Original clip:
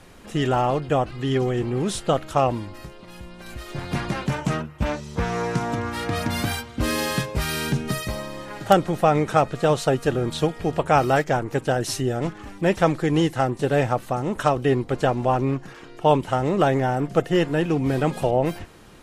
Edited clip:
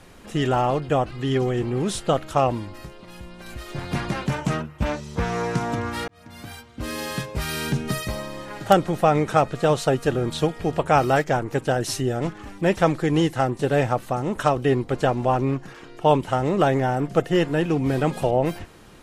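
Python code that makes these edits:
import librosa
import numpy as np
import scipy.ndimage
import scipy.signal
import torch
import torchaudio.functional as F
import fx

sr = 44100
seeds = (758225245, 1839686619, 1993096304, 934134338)

y = fx.edit(x, sr, fx.fade_in_span(start_s=6.08, length_s=1.77), tone=tone)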